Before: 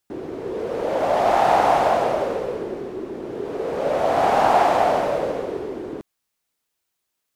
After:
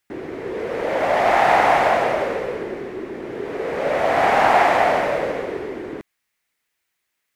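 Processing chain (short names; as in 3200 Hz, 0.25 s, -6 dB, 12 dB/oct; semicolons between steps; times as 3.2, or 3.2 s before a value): bell 2000 Hz +11 dB 0.85 oct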